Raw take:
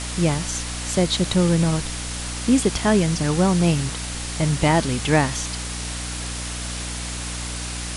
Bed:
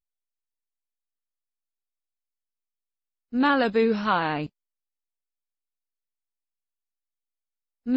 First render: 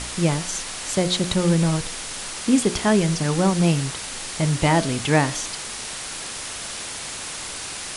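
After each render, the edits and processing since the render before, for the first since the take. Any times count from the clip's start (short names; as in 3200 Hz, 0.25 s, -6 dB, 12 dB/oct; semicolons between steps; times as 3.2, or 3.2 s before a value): de-hum 60 Hz, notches 12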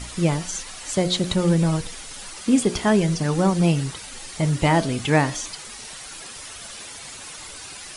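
denoiser 10 dB, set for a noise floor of -33 dBFS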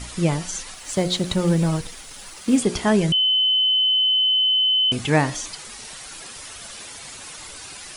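0.74–2.59 G.711 law mismatch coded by A; 3.12–4.92 bleep 3040 Hz -15.5 dBFS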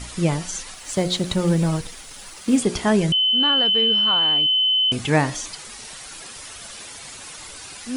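add bed -5 dB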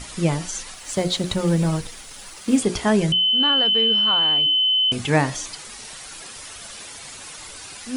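notches 60/120/180/240/300/360 Hz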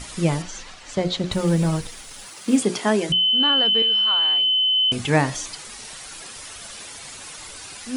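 0.42–1.32 air absorption 100 m; 2.25–3.09 HPF 75 Hz -> 280 Hz 24 dB/oct; 3.82–4.76 HPF 1200 Hz 6 dB/oct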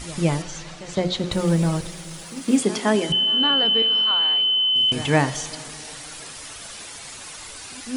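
reverse echo 0.163 s -17 dB; plate-style reverb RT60 3.9 s, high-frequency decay 0.55×, DRR 15.5 dB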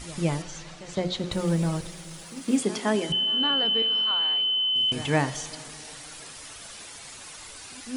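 gain -5 dB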